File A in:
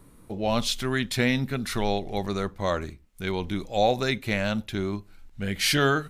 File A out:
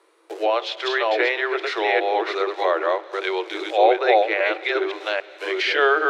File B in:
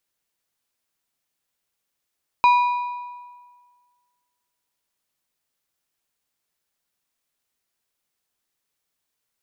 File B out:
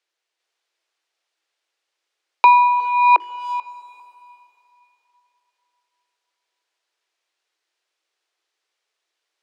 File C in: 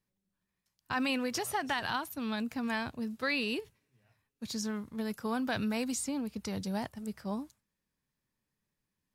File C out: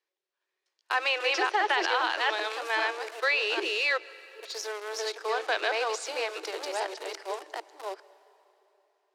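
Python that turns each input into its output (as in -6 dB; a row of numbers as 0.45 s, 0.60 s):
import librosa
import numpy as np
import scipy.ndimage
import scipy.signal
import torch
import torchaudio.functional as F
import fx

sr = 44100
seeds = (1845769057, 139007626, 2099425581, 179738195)

p1 = fx.reverse_delay(x, sr, ms=400, wet_db=-1.0)
p2 = scipy.signal.sosfilt(scipy.signal.butter(2, 4800.0, 'lowpass', fs=sr, output='sos'), p1)
p3 = fx.hum_notches(p2, sr, base_hz=50, count=8)
p4 = np.where(np.abs(p3) >= 10.0 ** (-34.0 / 20.0), p3, 0.0)
p5 = p3 + (p4 * librosa.db_to_amplitude(-5.0))
p6 = scipy.signal.sosfilt(scipy.signal.cheby1(10, 1.0, 320.0, 'highpass', fs=sr, output='sos'), p5)
p7 = fx.high_shelf(p6, sr, hz=2300.0, db=3.5)
p8 = fx.rev_plate(p7, sr, seeds[0], rt60_s=3.4, hf_ratio=0.85, predelay_ms=115, drr_db=19.0)
p9 = fx.env_lowpass_down(p8, sr, base_hz=2300.0, full_db=-20.5)
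y = p9 * librosa.db_to_amplitude(2.5)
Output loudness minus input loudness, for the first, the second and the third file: +5.5 LU, +5.0 LU, +6.0 LU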